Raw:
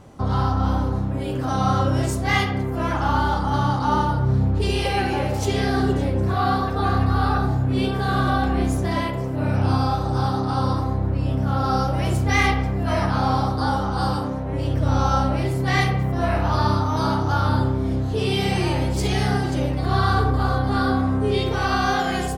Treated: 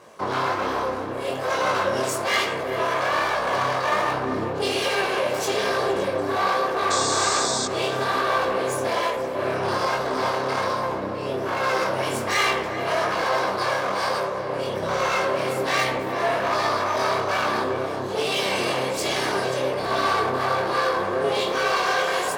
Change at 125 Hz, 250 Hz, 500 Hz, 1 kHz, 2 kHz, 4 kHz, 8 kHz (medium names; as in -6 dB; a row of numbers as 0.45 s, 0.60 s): -17.0 dB, -9.0 dB, +3.5 dB, 0.0 dB, +3.0 dB, +3.5 dB, +7.5 dB